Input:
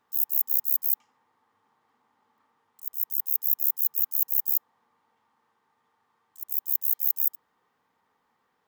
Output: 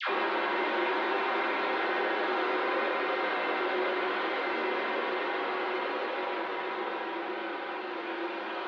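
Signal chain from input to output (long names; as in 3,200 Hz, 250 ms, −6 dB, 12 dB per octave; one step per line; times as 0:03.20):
spectrum averaged block by block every 400 ms
on a send: echo that builds up and dies away 137 ms, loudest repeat 5, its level −5.5 dB
on the sum: wrap-around overflow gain 27 dB
high-shelf EQ 2,100 Hz −11.5 dB
feedback delay network reverb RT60 0.39 s, low-frequency decay 1×, high-frequency decay 0.3×, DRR −7.5 dB
extreme stretch with random phases 4.9×, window 1.00 s, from 0:01.14
all-pass dispersion lows, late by 84 ms, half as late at 970 Hz
single-sideband voice off tune +61 Hz 220–3,600 Hz
flanger 0.94 Hz, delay 8.9 ms, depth 5.7 ms, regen +70%
in parallel at −0.5 dB: brickwall limiter −35 dBFS, peak gain reduction 6.5 dB
on the sum: level +6.5 dB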